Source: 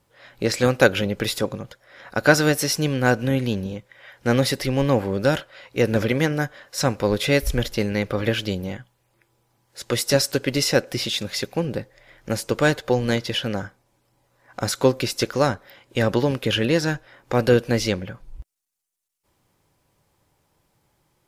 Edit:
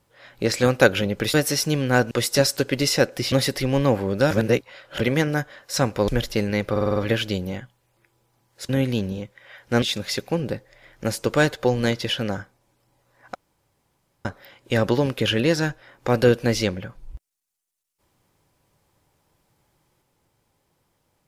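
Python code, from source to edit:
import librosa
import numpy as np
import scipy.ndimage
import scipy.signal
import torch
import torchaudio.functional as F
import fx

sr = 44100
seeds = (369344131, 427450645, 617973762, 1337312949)

y = fx.edit(x, sr, fx.cut(start_s=1.34, length_s=1.12),
    fx.swap(start_s=3.23, length_s=1.13, other_s=9.86, other_length_s=1.21),
    fx.reverse_span(start_s=5.35, length_s=0.69),
    fx.cut(start_s=7.12, length_s=0.38),
    fx.stutter(start_s=8.13, slice_s=0.05, count=6),
    fx.room_tone_fill(start_s=14.6, length_s=0.9), tone=tone)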